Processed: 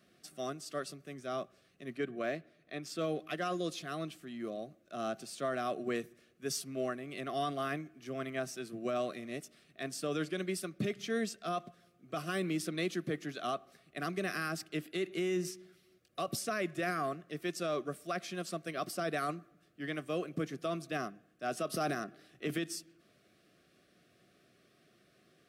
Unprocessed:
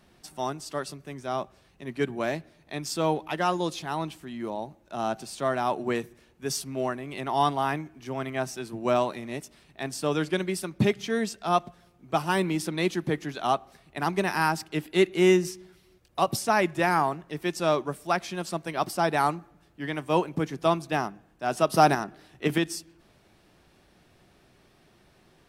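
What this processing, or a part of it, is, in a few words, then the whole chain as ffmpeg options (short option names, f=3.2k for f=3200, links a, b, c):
PA system with an anti-feedback notch: -filter_complex "[0:a]asettb=1/sr,asplit=3[a][b][c];[a]atrim=end=1.974[d];[b]atrim=start=1.97:end=2.99,asetpts=PTS-STARTPTS,afade=t=in:d=0.004:c=qsin,afade=t=out:st=1.016:d=0.004:c=qsin,bass=f=250:g=-3,treble=f=4k:g=-8[e];[c]atrim=start=2.986[f];[d][e]acrossfade=d=0.004:c1=hsin:c2=qsin[g];[g][f]acrossfade=d=0.004:c1=qsin:c2=hsin,highpass=140,asuperstop=centerf=900:order=8:qfactor=2.7,alimiter=limit=-19.5dB:level=0:latency=1:release=26,volume=-6dB"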